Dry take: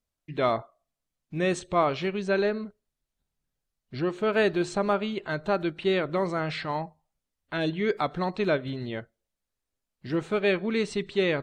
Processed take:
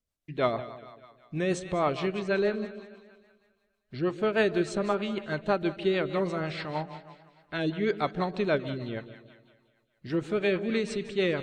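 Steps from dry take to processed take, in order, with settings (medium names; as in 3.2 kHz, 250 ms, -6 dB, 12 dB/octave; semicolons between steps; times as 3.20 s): two-band feedback delay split 700 Hz, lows 145 ms, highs 198 ms, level -13 dB; rotary cabinet horn 6.3 Hz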